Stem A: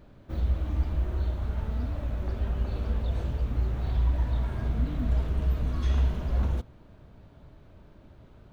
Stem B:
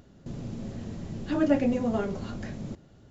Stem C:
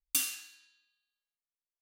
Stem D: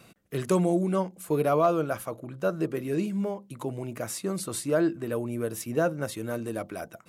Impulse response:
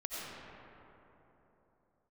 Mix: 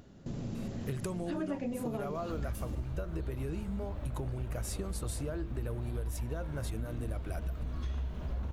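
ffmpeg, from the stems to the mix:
-filter_complex "[0:a]adelay=2000,volume=-2.5dB[link_01];[1:a]volume=-0.5dB,asplit=2[link_02][link_03];[2:a]adelay=2400,volume=-9.5dB[link_04];[3:a]lowshelf=frequency=150:width_type=q:width=1.5:gain=8.5,acompressor=threshold=-29dB:ratio=6,adelay=550,volume=1dB[link_05];[link_03]apad=whole_len=186024[link_06];[link_04][link_06]sidechaincompress=threshold=-44dB:ratio=8:attack=16:release=101[link_07];[link_01][link_02][link_07][link_05]amix=inputs=4:normalize=0,acompressor=threshold=-33dB:ratio=6"

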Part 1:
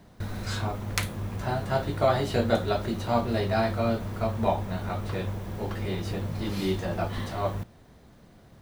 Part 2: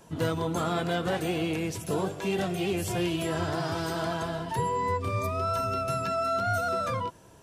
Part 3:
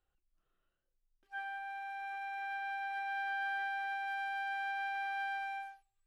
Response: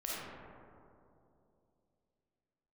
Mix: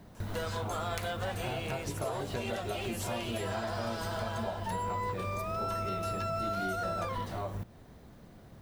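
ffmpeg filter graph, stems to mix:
-filter_complex "[0:a]lowpass=frequency=1400:poles=1,aemphasis=mode=production:type=75fm,acompressor=threshold=-28dB:ratio=6,volume=1.5dB[link_01];[1:a]highpass=frequency=480:width=0.5412,highpass=frequency=480:width=1.3066,adelay=150,volume=1.5dB[link_02];[link_01][link_02]amix=inputs=2:normalize=0,acompressor=threshold=-37dB:ratio=2"

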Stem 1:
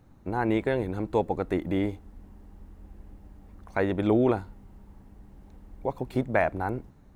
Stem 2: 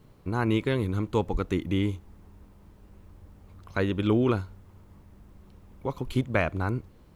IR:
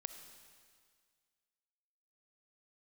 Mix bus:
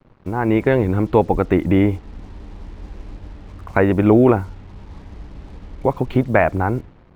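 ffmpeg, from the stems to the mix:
-filter_complex "[0:a]volume=0dB[link_01];[1:a]acompressor=threshold=-29dB:ratio=6,volume=0dB[link_02];[link_01][link_02]amix=inputs=2:normalize=0,lowpass=2700,dynaudnorm=framelen=110:gausssize=9:maxgain=11dB,acrusher=bits=7:mix=0:aa=0.5"

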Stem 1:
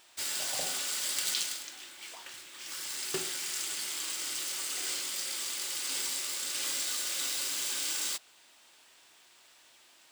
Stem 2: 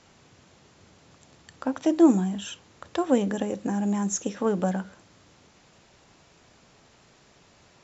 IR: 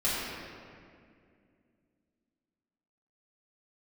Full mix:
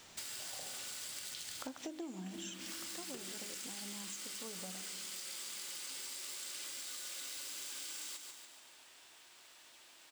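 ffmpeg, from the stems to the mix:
-filter_complex "[0:a]acompressor=threshold=-37dB:ratio=6,volume=-0.5dB,asplit=2[link_01][link_02];[link_02]volume=-10dB[link_03];[1:a]highshelf=frequency=4100:gain=11,bandreject=frequency=50:width_type=h:width=6,bandreject=frequency=100:width_type=h:width=6,bandreject=frequency=150:width_type=h:width=6,bandreject=frequency=200:width_type=h:width=6,alimiter=limit=-13.5dB:level=0:latency=1:release=293,volume=-6dB,afade=type=out:start_time=2.49:duration=0.51:silence=0.237137,asplit=2[link_04][link_05];[link_05]volume=-24dB[link_06];[2:a]atrim=start_sample=2205[link_07];[link_06][link_07]afir=irnorm=-1:irlink=0[link_08];[link_03]aecho=0:1:143|286|429|572|715|858|1001|1144:1|0.52|0.27|0.141|0.0731|0.038|0.0198|0.0103[link_09];[link_01][link_04][link_08][link_09]amix=inputs=4:normalize=0,acompressor=threshold=-41dB:ratio=16"

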